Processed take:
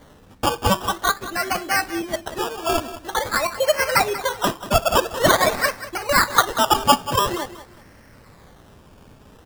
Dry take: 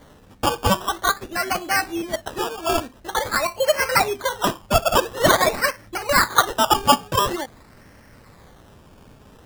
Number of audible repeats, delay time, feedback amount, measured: 2, 187 ms, 25%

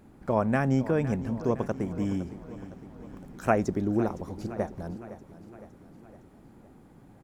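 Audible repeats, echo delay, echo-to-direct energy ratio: 4, 511 ms, −13.5 dB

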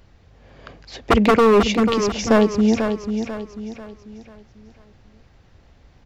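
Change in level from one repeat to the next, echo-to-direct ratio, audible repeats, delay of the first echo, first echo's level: −8.0 dB, −6.5 dB, 4, 492 ms, −7.5 dB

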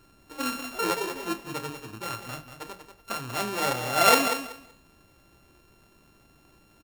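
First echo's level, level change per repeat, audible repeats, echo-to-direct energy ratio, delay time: −9.0 dB, −14.5 dB, 2, −9.0 dB, 189 ms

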